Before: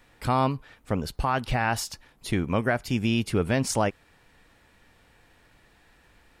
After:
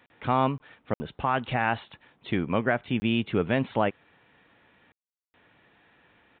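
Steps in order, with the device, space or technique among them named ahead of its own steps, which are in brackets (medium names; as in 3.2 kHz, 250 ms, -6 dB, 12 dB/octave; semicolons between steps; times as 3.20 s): call with lost packets (high-pass 130 Hz 12 dB/octave; resampled via 8 kHz; lost packets of 20 ms bursts)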